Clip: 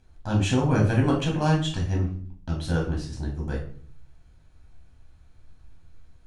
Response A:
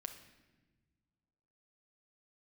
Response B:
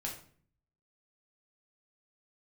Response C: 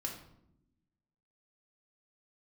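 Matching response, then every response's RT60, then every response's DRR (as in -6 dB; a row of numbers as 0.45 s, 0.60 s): B; 1.3 s, 0.50 s, 0.80 s; 5.5 dB, -2.0 dB, -1.0 dB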